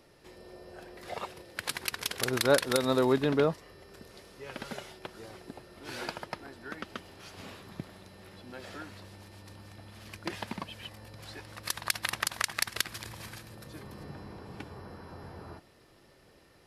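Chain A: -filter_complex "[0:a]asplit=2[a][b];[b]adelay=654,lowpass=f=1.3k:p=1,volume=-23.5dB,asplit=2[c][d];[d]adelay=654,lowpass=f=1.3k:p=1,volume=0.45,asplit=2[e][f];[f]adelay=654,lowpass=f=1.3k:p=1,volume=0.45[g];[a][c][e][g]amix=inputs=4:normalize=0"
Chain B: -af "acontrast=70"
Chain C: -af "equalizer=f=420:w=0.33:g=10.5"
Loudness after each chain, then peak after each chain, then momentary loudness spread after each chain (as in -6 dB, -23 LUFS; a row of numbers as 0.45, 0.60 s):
-32.5, -26.5, -24.0 LUFS; -7.0, -3.5, -2.0 dBFS; 23, 24, 25 LU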